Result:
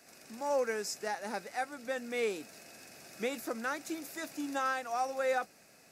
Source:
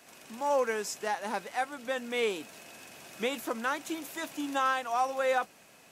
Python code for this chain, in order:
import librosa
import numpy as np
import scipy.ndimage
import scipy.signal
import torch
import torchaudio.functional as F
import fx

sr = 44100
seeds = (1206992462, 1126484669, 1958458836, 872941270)

y = fx.graphic_eq_31(x, sr, hz=(1000, 3150, 5000), db=(-9, -11, 5))
y = F.gain(torch.from_numpy(y), -2.5).numpy()